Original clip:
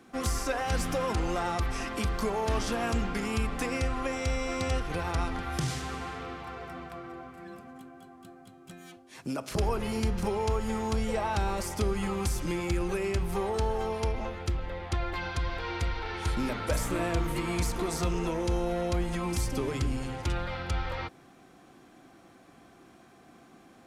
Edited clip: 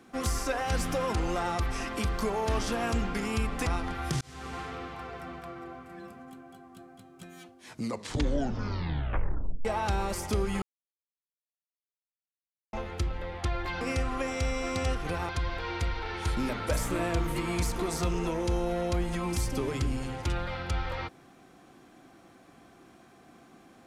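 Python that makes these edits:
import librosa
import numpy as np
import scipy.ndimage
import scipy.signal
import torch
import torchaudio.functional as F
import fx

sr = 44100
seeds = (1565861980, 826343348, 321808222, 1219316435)

y = fx.edit(x, sr, fx.move(start_s=3.66, length_s=1.48, to_s=15.29),
    fx.fade_in_span(start_s=5.69, length_s=0.37),
    fx.tape_stop(start_s=9.06, length_s=2.07),
    fx.silence(start_s=12.1, length_s=2.11), tone=tone)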